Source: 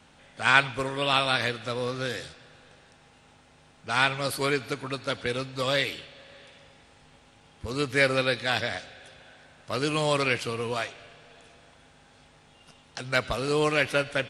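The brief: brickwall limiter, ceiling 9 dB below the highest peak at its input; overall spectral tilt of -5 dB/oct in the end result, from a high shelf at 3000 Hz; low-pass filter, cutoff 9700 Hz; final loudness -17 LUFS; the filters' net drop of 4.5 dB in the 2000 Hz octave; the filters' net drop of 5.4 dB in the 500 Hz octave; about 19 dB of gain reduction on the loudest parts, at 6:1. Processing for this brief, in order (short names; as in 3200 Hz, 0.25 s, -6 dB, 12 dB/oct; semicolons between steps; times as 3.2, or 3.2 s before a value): LPF 9700 Hz; bell 500 Hz -6 dB; bell 2000 Hz -4 dB; high shelf 3000 Hz -5 dB; compressor 6:1, threshold -38 dBFS; gain +27.5 dB; limiter -4 dBFS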